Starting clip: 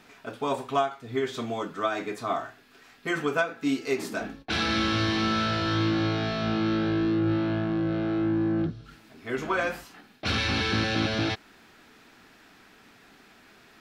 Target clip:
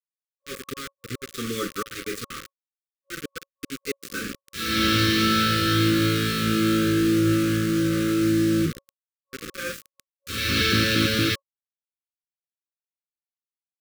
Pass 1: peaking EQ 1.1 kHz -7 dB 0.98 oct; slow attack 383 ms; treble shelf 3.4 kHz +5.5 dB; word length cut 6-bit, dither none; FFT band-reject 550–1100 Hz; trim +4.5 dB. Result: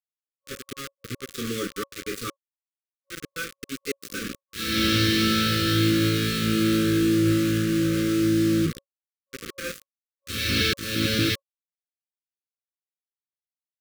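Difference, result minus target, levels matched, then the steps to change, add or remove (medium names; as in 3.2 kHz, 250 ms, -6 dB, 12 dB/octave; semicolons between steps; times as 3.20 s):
1 kHz band -4.0 dB
remove: peaking EQ 1.1 kHz -7 dB 0.98 oct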